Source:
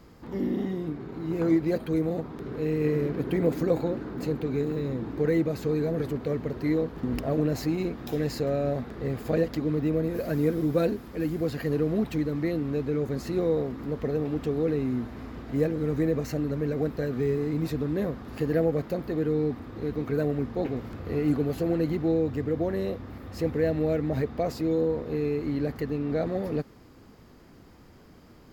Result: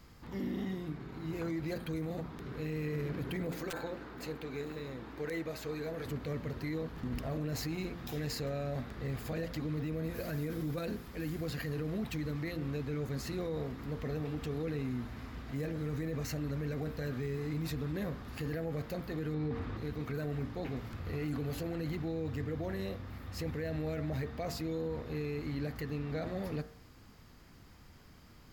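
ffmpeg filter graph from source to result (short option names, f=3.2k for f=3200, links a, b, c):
-filter_complex "[0:a]asettb=1/sr,asplit=3[a][b][c];[a]atrim=end=3.514[d];[b]atrim=start=3.51:end=6.06,asetpts=PTS-STARTPTS,afade=t=in:d=0.004:c=qsin,afade=t=out:st=2.546:d=0.004:c=qsin,bass=f=250:g=-12,treble=f=4k:g=-2,aeval=exprs='val(0)+0.002*(sin(2*PI*60*n/s)+sin(2*PI*2*60*n/s)/2+sin(2*PI*3*60*n/s)/3+sin(2*PI*4*60*n/s)/4+sin(2*PI*5*60*n/s)/5)':c=same,aeval=exprs='(mod(7.08*val(0)+1,2)-1)/7.08':c=same[e];[c]atrim=start=6.056[f];[d][e]acrossfade=d=0.004:c1=hsin:c2=qsin[g];[g][f]acrossfade=d=0.004:c1=qsin:c2=hsin,asettb=1/sr,asplit=3[h][i][j];[h]atrim=end=19.344[k];[i]atrim=start=19.34:end=19.77,asetpts=PTS-STARTPTS,afade=t=in:d=0.004:c=qsin,afade=t=out:st=0.426:d=0.004:c=qsin,aemphasis=mode=reproduction:type=50fm,acontrast=64[l];[j]atrim=start=19.766[m];[k][l]acrossfade=d=0.004:c1=hsin:c2=qsin[n];[n][m]acrossfade=d=0.004:c1=qsin:c2=hsin,equalizer=f=390:w=0.55:g=-10,bandreject=f=57.42:t=h:w=4,bandreject=f=114.84:t=h:w=4,bandreject=f=172.26:t=h:w=4,bandreject=f=229.68:t=h:w=4,bandreject=f=287.1:t=h:w=4,bandreject=f=344.52:t=h:w=4,bandreject=f=401.94:t=h:w=4,bandreject=f=459.36:t=h:w=4,bandreject=f=516.78:t=h:w=4,bandreject=f=574.2:t=h:w=4,bandreject=f=631.62:t=h:w=4,bandreject=f=689.04:t=h:w=4,bandreject=f=746.46:t=h:w=4,bandreject=f=803.88:t=h:w=4,bandreject=f=861.3:t=h:w=4,bandreject=f=918.72:t=h:w=4,bandreject=f=976.14:t=h:w=4,bandreject=f=1.03356k:t=h:w=4,bandreject=f=1.09098k:t=h:w=4,bandreject=f=1.1484k:t=h:w=4,bandreject=f=1.20582k:t=h:w=4,bandreject=f=1.26324k:t=h:w=4,bandreject=f=1.32066k:t=h:w=4,bandreject=f=1.37808k:t=h:w=4,bandreject=f=1.4355k:t=h:w=4,bandreject=f=1.49292k:t=h:w=4,bandreject=f=1.55034k:t=h:w=4,bandreject=f=1.60776k:t=h:w=4,bandreject=f=1.66518k:t=h:w=4,bandreject=f=1.7226k:t=h:w=4,bandreject=f=1.78002k:t=h:w=4,bandreject=f=1.83744k:t=h:w=4,alimiter=level_in=5dB:limit=-24dB:level=0:latency=1:release=16,volume=-5dB"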